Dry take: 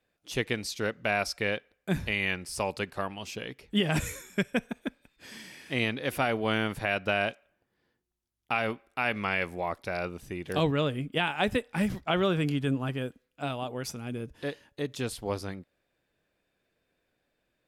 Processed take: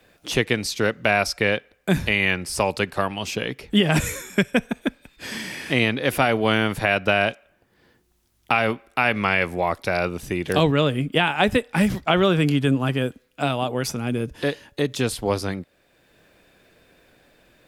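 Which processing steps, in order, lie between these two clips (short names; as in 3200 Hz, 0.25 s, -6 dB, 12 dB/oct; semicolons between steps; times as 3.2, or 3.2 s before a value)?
three-band squash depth 40%; gain +8.5 dB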